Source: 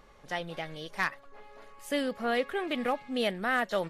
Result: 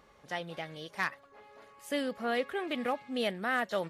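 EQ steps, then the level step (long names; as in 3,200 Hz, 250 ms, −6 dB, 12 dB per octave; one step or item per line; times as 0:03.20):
high-pass filter 65 Hz
−2.5 dB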